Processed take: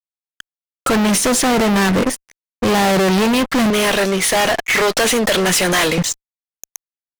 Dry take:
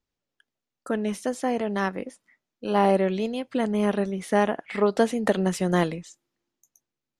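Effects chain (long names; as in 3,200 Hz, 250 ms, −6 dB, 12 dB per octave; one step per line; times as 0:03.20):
0:03.70–0:05.98: high-pass filter 1,200 Hz 6 dB per octave
fuzz pedal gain 45 dB, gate −52 dBFS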